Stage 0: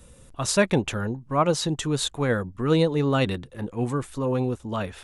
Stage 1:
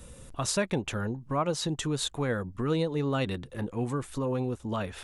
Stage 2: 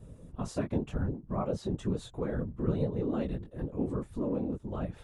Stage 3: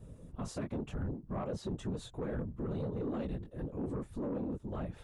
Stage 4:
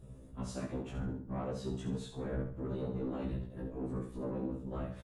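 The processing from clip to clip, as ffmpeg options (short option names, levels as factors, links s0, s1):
-af "acompressor=threshold=0.0178:ratio=2,volume=1.33"
-af "tiltshelf=f=970:g=9,flanger=delay=18.5:depth=2.2:speed=0.97,afftfilt=real='hypot(re,im)*cos(2*PI*random(0))':imag='hypot(re,im)*sin(2*PI*random(1))':win_size=512:overlap=0.75"
-af "alimiter=level_in=1.12:limit=0.0631:level=0:latency=1:release=19,volume=0.891,asoftclip=type=tanh:threshold=0.0376,volume=0.841"
-af "aecho=1:1:68|136|204|272:0.447|0.156|0.0547|0.0192,afftfilt=real='re*1.73*eq(mod(b,3),0)':imag='im*1.73*eq(mod(b,3),0)':win_size=2048:overlap=0.75,volume=1.12"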